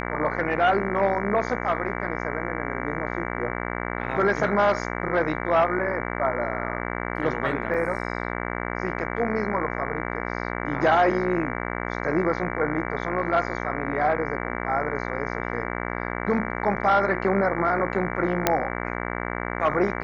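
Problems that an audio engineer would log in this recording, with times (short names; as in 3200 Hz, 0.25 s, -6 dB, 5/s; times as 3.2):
buzz 60 Hz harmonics 38 -30 dBFS
7.74 gap 4.5 ms
18.47 pop -3 dBFS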